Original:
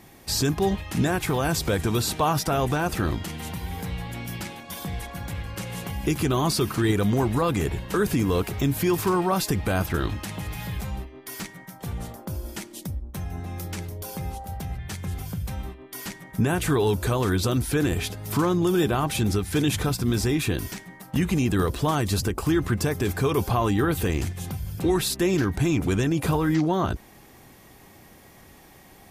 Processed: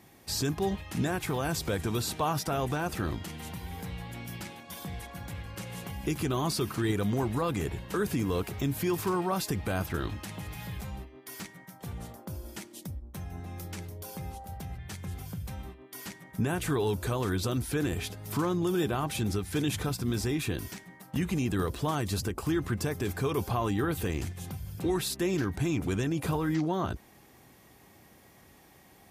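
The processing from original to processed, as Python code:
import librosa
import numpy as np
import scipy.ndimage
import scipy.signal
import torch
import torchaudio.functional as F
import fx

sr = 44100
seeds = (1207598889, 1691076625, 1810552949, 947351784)

y = scipy.signal.sosfilt(scipy.signal.butter(2, 52.0, 'highpass', fs=sr, output='sos'), x)
y = F.gain(torch.from_numpy(y), -6.5).numpy()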